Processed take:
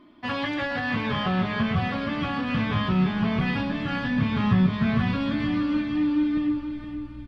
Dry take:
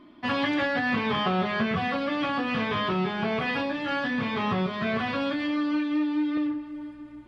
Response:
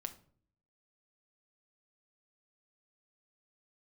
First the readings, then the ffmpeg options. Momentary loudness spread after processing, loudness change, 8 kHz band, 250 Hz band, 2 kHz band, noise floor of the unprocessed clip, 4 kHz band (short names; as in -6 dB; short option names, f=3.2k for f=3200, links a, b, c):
6 LU, +1.5 dB, n/a, +3.5 dB, -1.0 dB, -45 dBFS, -1.0 dB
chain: -af "asubboost=boost=10.5:cutoff=150,aecho=1:1:468|936|1404|1872|2340:0.355|0.16|0.0718|0.0323|0.0145,volume=-1.5dB"